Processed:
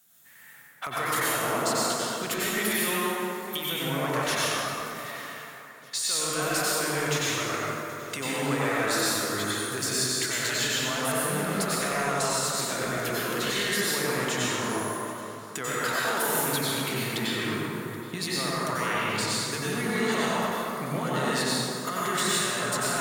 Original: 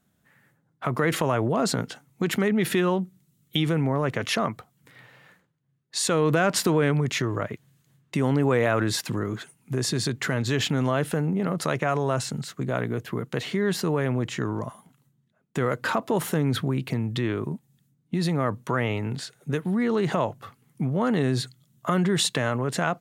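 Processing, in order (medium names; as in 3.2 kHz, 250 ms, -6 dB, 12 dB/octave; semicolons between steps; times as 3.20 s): tilt EQ +4.5 dB/octave; compression 5:1, threshold -31 dBFS, peak gain reduction 19 dB; hard clipper -24 dBFS, distortion -19 dB; on a send: feedback echo behind a high-pass 776 ms, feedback 56%, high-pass 1.6 kHz, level -21 dB; on the sum: plate-style reverb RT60 3.3 s, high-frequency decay 0.45×, pre-delay 80 ms, DRR -8 dB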